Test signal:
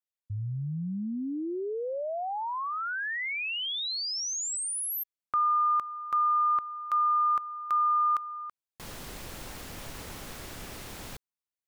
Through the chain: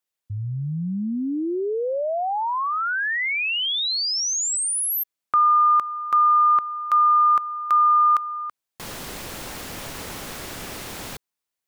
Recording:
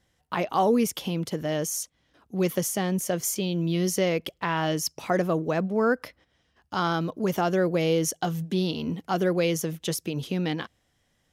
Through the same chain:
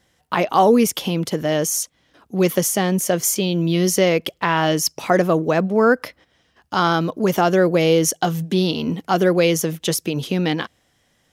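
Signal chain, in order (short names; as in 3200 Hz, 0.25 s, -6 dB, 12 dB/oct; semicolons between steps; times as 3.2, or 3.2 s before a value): low shelf 99 Hz -8.5 dB; gain +8.5 dB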